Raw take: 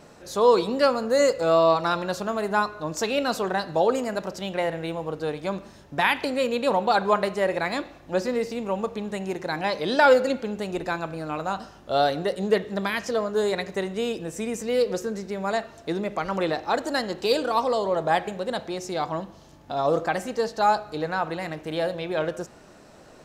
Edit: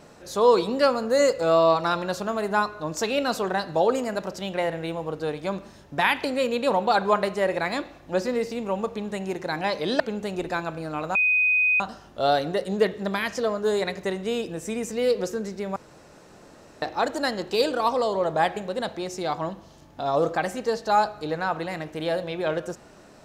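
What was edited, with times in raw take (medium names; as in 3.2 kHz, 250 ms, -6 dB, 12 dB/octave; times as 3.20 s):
10.00–10.36 s: delete
11.51 s: add tone 2.5 kHz -17.5 dBFS 0.65 s
15.47–16.53 s: room tone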